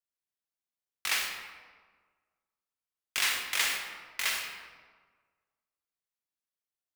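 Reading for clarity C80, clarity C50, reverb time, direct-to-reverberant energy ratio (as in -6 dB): 5.0 dB, 3.5 dB, 1.5 s, 2.0 dB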